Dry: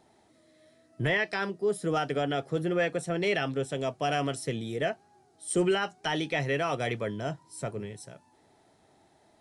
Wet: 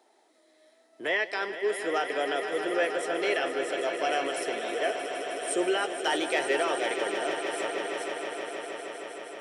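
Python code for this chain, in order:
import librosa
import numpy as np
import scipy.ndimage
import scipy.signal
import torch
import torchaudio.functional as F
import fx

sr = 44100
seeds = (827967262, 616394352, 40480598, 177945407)

y = fx.leveller(x, sr, passes=1, at=(5.97, 6.63))
y = scipy.signal.sosfilt(scipy.signal.butter(4, 340.0, 'highpass', fs=sr, output='sos'), y)
y = fx.echo_swell(y, sr, ms=157, loudest=5, wet_db=-11.0)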